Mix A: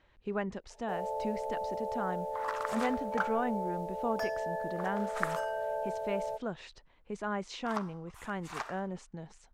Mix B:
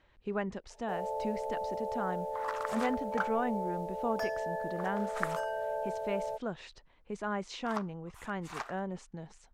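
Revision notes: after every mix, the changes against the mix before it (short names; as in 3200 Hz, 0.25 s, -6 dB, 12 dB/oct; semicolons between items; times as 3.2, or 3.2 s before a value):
reverb: off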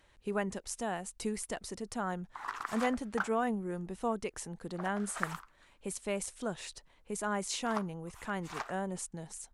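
speech: remove air absorption 180 m; first sound: muted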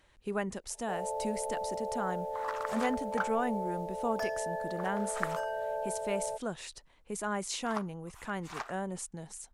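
first sound: unmuted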